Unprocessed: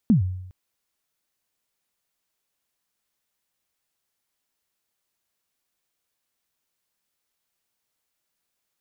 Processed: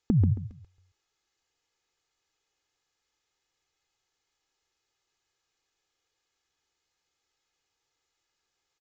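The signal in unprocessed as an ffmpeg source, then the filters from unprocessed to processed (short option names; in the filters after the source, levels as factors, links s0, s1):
-f lavfi -i "aevalsrc='0.282*pow(10,-3*t/0.82)*sin(2*PI*(250*0.119/log(92/250)*(exp(log(92/250)*min(t,0.119)/0.119)-1)+92*max(t-0.119,0)))':d=0.41:s=44100"
-af "aecho=1:1:2.4:0.65,aecho=1:1:136|272|408:0.531|0.133|0.0332,aresample=16000,aresample=44100"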